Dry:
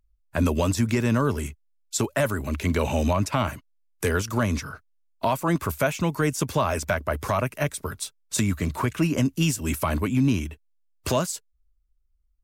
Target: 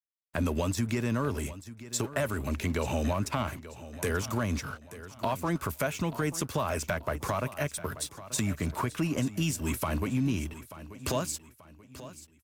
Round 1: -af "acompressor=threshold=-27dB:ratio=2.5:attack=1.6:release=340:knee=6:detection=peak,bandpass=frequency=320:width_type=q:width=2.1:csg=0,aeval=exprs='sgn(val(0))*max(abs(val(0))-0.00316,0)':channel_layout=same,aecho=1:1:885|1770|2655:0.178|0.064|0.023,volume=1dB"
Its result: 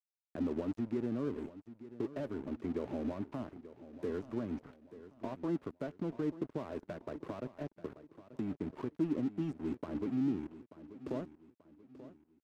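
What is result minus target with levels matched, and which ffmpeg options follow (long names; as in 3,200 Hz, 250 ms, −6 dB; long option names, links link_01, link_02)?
250 Hz band +4.0 dB
-af "acompressor=threshold=-27dB:ratio=2.5:attack=1.6:release=340:knee=6:detection=peak,aeval=exprs='sgn(val(0))*max(abs(val(0))-0.00316,0)':channel_layout=same,aecho=1:1:885|1770|2655:0.178|0.064|0.023,volume=1dB"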